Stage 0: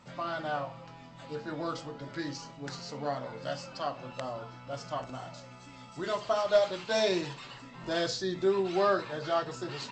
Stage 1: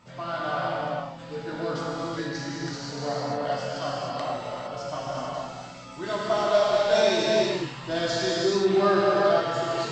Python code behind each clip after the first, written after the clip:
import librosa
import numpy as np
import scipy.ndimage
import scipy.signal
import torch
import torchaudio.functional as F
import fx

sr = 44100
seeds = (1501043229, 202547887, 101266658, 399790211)

y = fx.rev_gated(x, sr, seeds[0], gate_ms=490, shape='flat', drr_db=-6.0)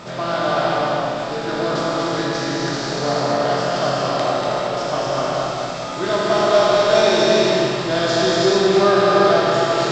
y = fx.bin_compress(x, sr, power=0.6)
y = y + 10.0 ** (-5.5 / 20.0) * np.pad(y, (int(240 * sr / 1000.0), 0))[:len(y)]
y = F.gain(torch.from_numpy(y), 4.0).numpy()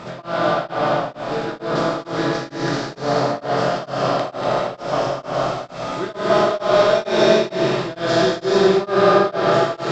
y = fx.high_shelf(x, sr, hz=4700.0, db=-9.5)
y = y * np.abs(np.cos(np.pi * 2.2 * np.arange(len(y)) / sr))
y = F.gain(torch.from_numpy(y), 2.5).numpy()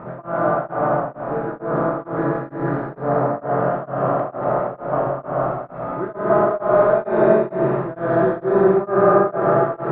y = scipy.signal.sosfilt(scipy.signal.butter(4, 1500.0, 'lowpass', fs=sr, output='sos'), x)
y = fx.peak_eq(y, sr, hz=140.0, db=2.5, octaves=0.22)